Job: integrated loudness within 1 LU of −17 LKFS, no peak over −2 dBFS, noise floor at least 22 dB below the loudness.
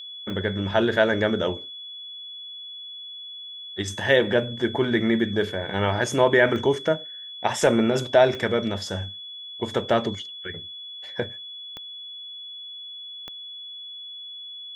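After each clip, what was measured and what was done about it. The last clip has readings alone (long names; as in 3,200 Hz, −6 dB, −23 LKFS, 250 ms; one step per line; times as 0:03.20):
number of clicks 5; interfering tone 3,400 Hz; level of the tone −36 dBFS; integrated loudness −23.5 LKFS; sample peak −5.5 dBFS; target loudness −17.0 LKFS
→ click removal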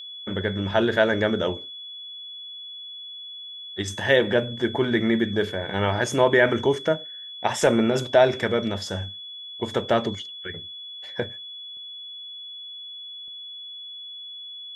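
number of clicks 0; interfering tone 3,400 Hz; level of the tone −36 dBFS
→ notch filter 3,400 Hz, Q 30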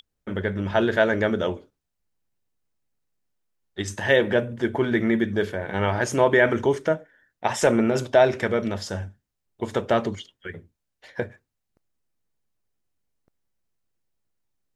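interfering tone none found; integrated loudness −23.5 LKFS; sample peak −5.5 dBFS; target loudness −17.0 LKFS
→ level +6.5 dB
brickwall limiter −2 dBFS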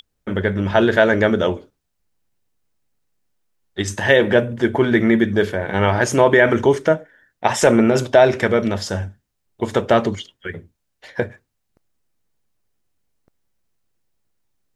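integrated loudness −17.5 LKFS; sample peak −2.0 dBFS; background noise floor −74 dBFS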